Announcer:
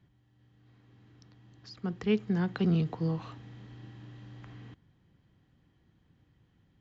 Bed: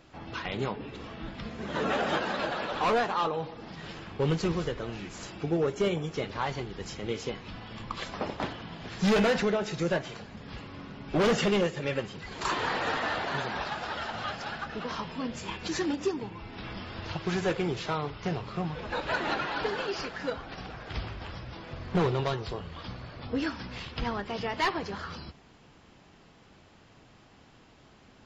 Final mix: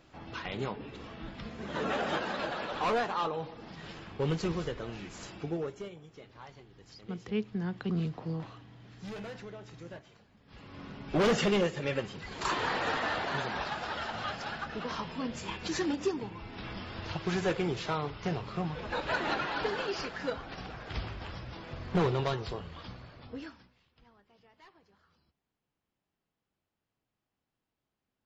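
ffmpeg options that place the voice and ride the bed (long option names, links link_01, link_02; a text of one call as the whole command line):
ffmpeg -i stem1.wav -i stem2.wav -filter_complex "[0:a]adelay=5250,volume=-5dB[link_01];[1:a]volume=13.5dB,afade=type=out:start_time=5.34:duration=0.56:silence=0.177828,afade=type=in:start_time=10.46:duration=0.41:silence=0.141254,afade=type=out:start_time=22.45:duration=1.29:silence=0.0354813[link_02];[link_01][link_02]amix=inputs=2:normalize=0" out.wav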